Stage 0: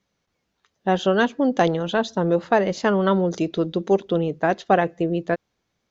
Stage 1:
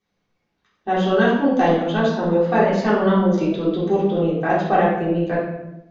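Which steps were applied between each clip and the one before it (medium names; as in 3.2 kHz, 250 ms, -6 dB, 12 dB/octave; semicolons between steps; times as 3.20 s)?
reverberation RT60 0.90 s, pre-delay 3 ms, DRR -10 dB; trim -8.5 dB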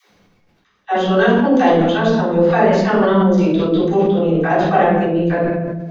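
reverse; upward compressor, threshold -38 dBFS; reverse; phase dispersion lows, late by 112 ms, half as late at 320 Hz; decay stretcher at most 26 dB/s; trim +3 dB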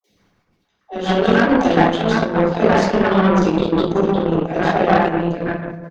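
three bands offset in time lows, highs, mids 40/160 ms, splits 630/2300 Hz; Chebyshev shaper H 7 -22 dB, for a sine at -2.5 dBFS; harmonic-percussive split harmonic -6 dB; trim +5 dB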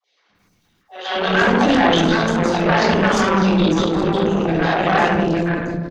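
treble shelf 2.4 kHz +8 dB; transient shaper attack -8 dB, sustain +9 dB; three bands offset in time mids, lows, highs 200/350 ms, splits 500/5200 Hz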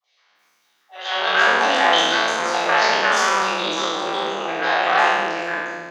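spectral sustain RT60 1.34 s; high-pass 700 Hz 12 dB/octave; trim -1 dB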